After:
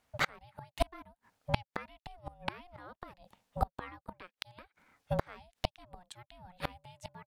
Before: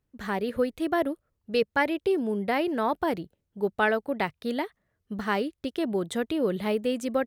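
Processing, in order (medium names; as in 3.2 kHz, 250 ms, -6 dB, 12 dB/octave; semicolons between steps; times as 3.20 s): frequency weighting A; ring modulator 360 Hz; inverted gate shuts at -29 dBFS, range -35 dB; trim +15 dB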